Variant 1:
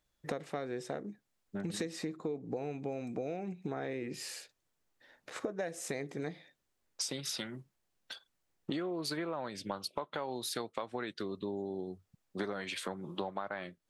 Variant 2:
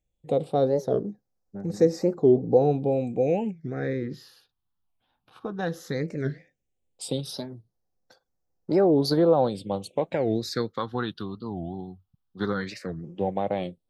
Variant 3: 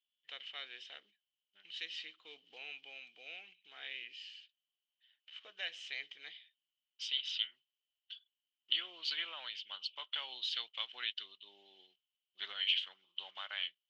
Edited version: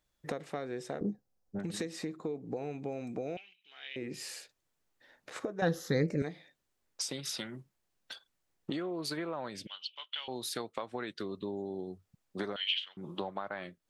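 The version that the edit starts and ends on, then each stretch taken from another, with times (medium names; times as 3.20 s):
1
1.01–1.59 s: from 2
3.37–3.96 s: from 3
5.62–6.22 s: from 2
9.67–10.28 s: from 3
12.56–12.97 s: from 3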